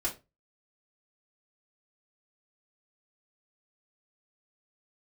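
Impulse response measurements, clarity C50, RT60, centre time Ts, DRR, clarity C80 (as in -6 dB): 12.5 dB, 0.25 s, 15 ms, -7.0 dB, 20.5 dB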